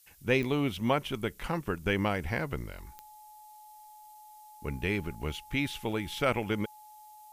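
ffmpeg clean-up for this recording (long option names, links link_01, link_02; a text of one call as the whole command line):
ffmpeg -i in.wav -af "adeclick=threshold=4,bandreject=frequency=850:width=30,afftdn=noise_reduction=25:noise_floor=-52" out.wav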